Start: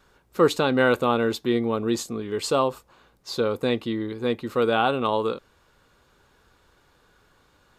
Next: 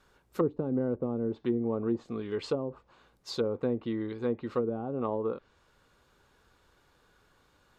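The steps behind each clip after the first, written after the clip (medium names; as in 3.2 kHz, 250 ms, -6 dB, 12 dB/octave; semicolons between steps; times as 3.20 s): low-pass that closes with the level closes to 350 Hz, closed at -17.5 dBFS; trim -5 dB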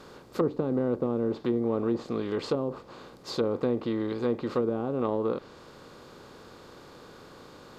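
spectral levelling over time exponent 0.6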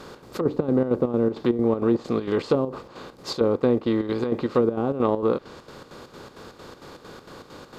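square tremolo 4.4 Hz, depth 60%, duty 65%; trim +7 dB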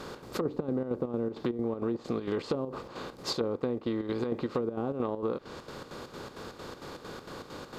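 compression 6:1, threshold -28 dBFS, peak gain reduction 12.5 dB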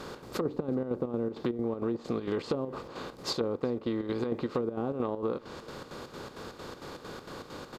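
echo from a far wall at 64 m, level -24 dB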